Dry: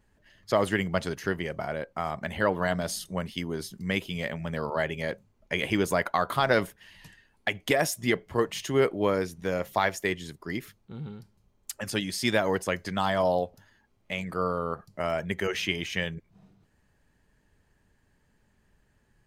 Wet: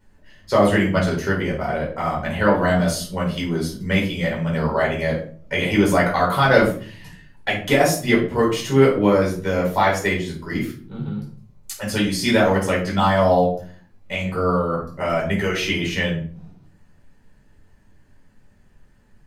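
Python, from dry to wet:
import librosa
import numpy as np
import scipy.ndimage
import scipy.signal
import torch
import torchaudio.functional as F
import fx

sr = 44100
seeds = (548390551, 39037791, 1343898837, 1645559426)

y = fx.room_shoebox(x, sr, seeds[0], volume_m3=380.0, walls='furnished', distance_m=4.7)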